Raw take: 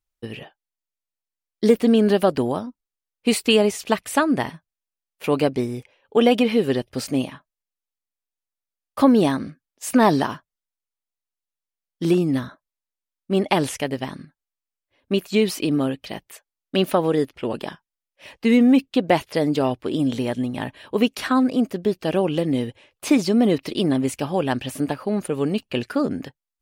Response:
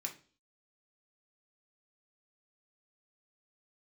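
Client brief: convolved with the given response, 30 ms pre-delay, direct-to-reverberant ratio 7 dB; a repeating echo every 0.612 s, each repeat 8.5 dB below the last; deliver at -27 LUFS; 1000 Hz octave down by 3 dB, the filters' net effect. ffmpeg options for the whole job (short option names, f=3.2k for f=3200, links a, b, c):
-filter_complex "[0:a]equalizer=f=1k:t=o:g=-4,aecho=1:1:612|1224|1836|2448:0.376|0.143|0.0543|0.0206,asplit=2[a][b];[1:a]atrim=start_sample=2205,adelay=30[c];[b][c]afir=irnorm=-1:irlink=0,volume=-6dB[d];[a][d]amix=inputs=2:normalize=0,volume=-5.5dB"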